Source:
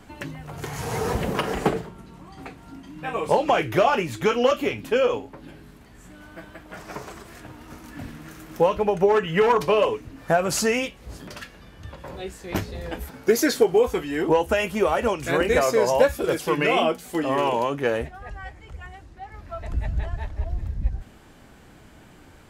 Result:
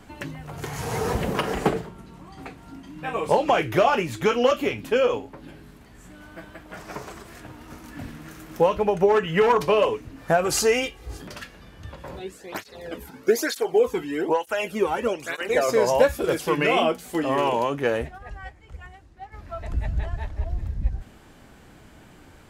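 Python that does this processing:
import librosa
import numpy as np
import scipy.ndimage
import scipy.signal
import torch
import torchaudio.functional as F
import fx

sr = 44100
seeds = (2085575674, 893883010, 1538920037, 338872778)

y = fx.comb(x, sr, ms=2.5, depth=0.65, at=(10.44, 11.22))
y = fx.flanger_cancel(y, sr, hz=1.1, depth_ms=1.8, at=(12.19, 15.69))
y = fx.upward_expand(y, sr, threshold_db=-46.0, expansion=1.5, at=(18.18, 19.33))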